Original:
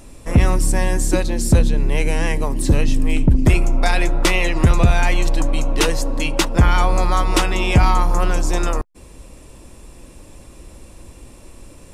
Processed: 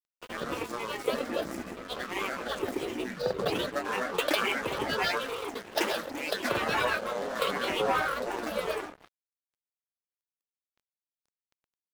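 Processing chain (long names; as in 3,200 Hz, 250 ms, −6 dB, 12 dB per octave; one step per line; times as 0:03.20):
running median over 5 samples
in parallel at −1.5 dB: downward compressor, threshold −28 dBFS, peak gain reduction 18 dB
on the sum: phaser with its sweep stopped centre 790 Hz, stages 8
single-tap delay 84 ms −11 dB
on a send at −4 dB: convolution reverb RT60 0.55 s, pre-delay 92 ms
on the sum: granular cloud 121 ms, grains 29 per second, pitch spread up and down by 12 semitones
high-pass filter 370 Hz 12 dB per octave
dead-zone distortion −38.5 dBFS
level −2 dB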